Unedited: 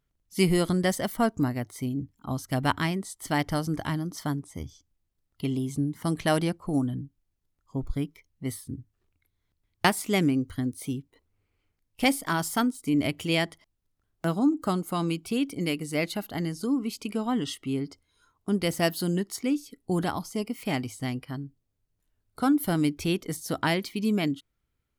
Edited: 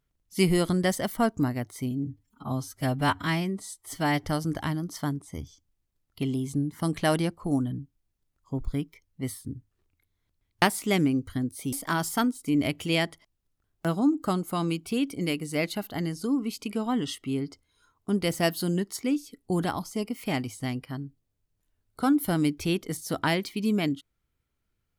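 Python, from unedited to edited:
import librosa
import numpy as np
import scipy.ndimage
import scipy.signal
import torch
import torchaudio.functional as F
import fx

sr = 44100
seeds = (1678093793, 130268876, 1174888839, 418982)

y = fx.edit(x, sr, fx.stretch_span(start_s=1.91, length_s=1.55, factor=1.5),
    fx.cut(start_s=10.95, length_s=1.17), tone=tone)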